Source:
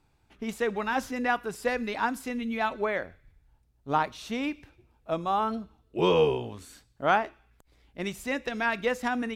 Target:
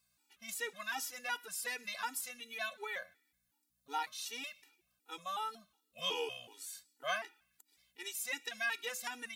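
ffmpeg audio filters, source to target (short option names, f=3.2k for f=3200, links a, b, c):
-af "aeval=exprs='val(0)+0.00141*(sin(2*PI*60*n/s)+sin(2*PI*2*60*n/s)/2+sin(2*PI*3*60*n/s)/3+sin(2*PI*4*60*n/s)/4+sin(2*PI*5*60*n/s)/5)':c=same,aderivative,afftfilt=real='re*gt(sin(2*PI*2.7*pts/sr)*(1-2*mod(floor(b*sr/1024/250),2)),0)':imag='im*gt(sin(2*PI*2.7*pts/sr)*(1-2*mod(floor(b*sr/1024/250),2)),0)':win_size=1024:overlap=0.75,volume=7.5dB"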